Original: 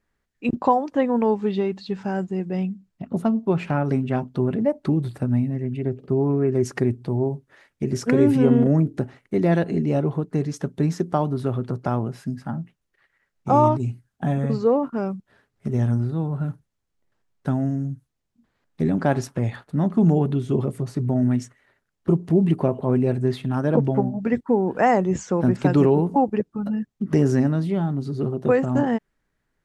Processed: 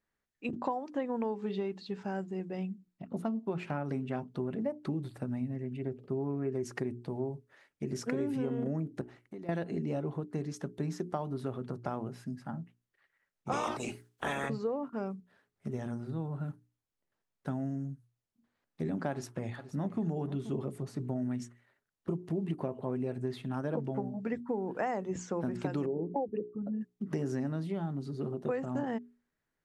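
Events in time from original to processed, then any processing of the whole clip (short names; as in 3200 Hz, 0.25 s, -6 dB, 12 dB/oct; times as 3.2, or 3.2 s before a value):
9.01–9.49 compressor 12:1, threshold -30 dBFS
13.51–14.48 spectral limiter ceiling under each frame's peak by 29 dB
19.1–20.01 echo throw 0.48 s, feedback 15%, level -15.5 dB
25.86–26.81 formant sharpening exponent 2
whole clip: low shelf 92 Hz -9 dB; notches 60/120/180/240/300/360/420 Hz; compressor, threshold -21 dBFS; gain -8.5 dB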